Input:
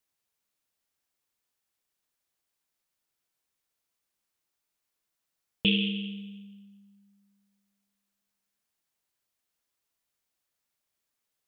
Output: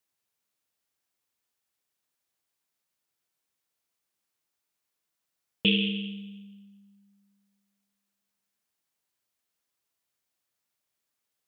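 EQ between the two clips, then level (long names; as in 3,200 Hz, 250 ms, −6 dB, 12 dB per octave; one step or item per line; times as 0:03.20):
dynamic equaliser 930 Hz, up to +7 dB, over −45 dBFS, Q 0.7
high-pass filter 65 Hz
0.0 dB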